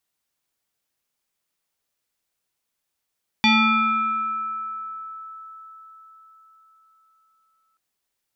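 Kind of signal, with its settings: FM tone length 4.33 s, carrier 1310 Hz, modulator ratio 0.83, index 2.4, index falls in 2.36 s exponential, decay 4.78 s, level -12.5 dB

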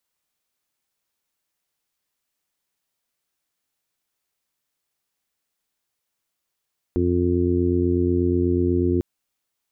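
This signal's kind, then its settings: steady additive tone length 2.05 s, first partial 88.2 Hz, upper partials -6.5/0/2/-8.5 dB, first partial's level -23 dB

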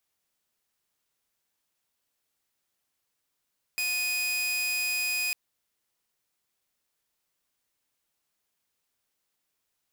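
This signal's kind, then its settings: tone saw 2490 Hz -24 dBFS 1.55 s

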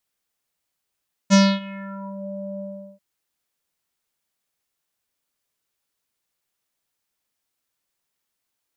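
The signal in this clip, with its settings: synth note square G3 24 dB/oct, low-pass 610 Hz, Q 3.2, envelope 3.5 oct, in 0.95 s, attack 35 ms, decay 0.26 s, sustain -23 dB, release 0.39 s, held 1.30 s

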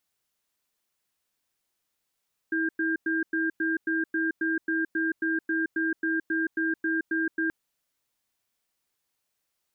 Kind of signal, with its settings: cadence 324 Hz, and 1600 Hz, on 0.17 s, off 0.10 s, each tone -26.5 dBFS 4.98 s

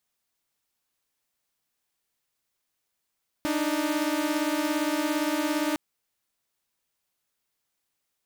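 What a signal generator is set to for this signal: chord D4/D#4 saw, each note -25 dBFS 2.31 s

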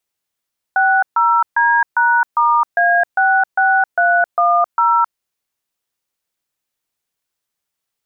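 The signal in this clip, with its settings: DTMF "60D#*A66310", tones 0.265 s, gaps 0.137 s, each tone -13 dBFS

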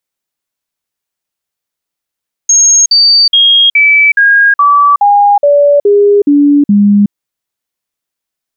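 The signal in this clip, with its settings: stepped sine 6520 Hz down, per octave 2, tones 11, 0.37 s, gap 0.05 s -3 dBFS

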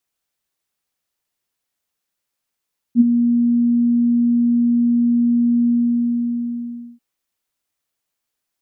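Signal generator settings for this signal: ADSR sine 238 Hz, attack 55 ms, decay 22 ms, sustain -7.5 dB, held 2.73 s, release 1.31 s -5 dBFS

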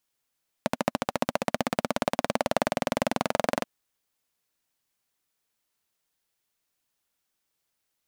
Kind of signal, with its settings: single-cylinder engine model, changing speed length 2.98 s, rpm 1600, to 2700, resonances 240/580 Hz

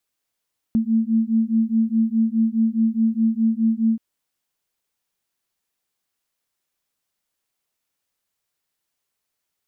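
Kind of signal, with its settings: beating tones 222 Hz, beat 4.8 Hz, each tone -19.5 dBFS 3.23 s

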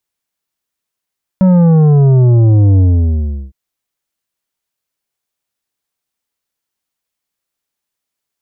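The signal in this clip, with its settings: sub drop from 190 Hz, over 2.11 s, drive 9 dB, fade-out 0.73 s, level -6 dB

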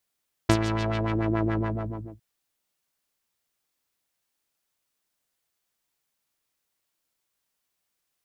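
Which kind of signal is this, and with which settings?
synth patch with filter wobble A2, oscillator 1 saw, interval +19 st, oscillator 2 level -2.5 dB, filter lowpass, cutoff 250 Hz, Q 1.4, filter envelope 4 oct, filter decay 0.75 s, filter sustain 40%, attack 6.9 ms, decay 0.07 s, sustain -9 dB, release 0.60 s, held 1.11 s, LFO 7 Hz, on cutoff 1.4 oct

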